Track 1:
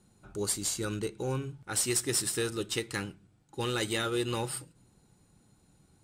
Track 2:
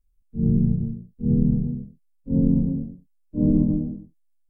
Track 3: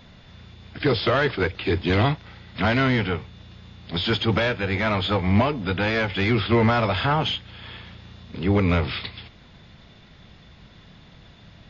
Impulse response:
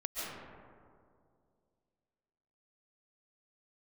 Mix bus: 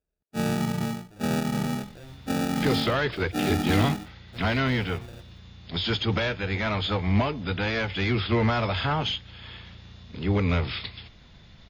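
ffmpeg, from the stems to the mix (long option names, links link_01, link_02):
-filter_complex "[0:a]lowpass=3200,bandreject=frequency=410:width=12,adelay=750,volume=-14.5dB[link_01];[1:a]highpass=150,acompressor=threshold=-23dB:ratio=6,lowpass=frequency=440:width_type=q:width=4.9,volume=-1dB[link_02];[2:a]highshelf=frequency=3700:gain=7,adelay=1800,volume=-5.5dB[link_03];[link_01][link_02]amix=inputs=2:normalize=0,acrusher=samples=42:mix=1:aa=0.000001,alimiter=limit=-20dB:level=0:latency=1:release=66,volume=0dB[link_04];[link_03][link_04]amix=inputs=2:normalize=0,lowshelf=frequency=70:gain=9"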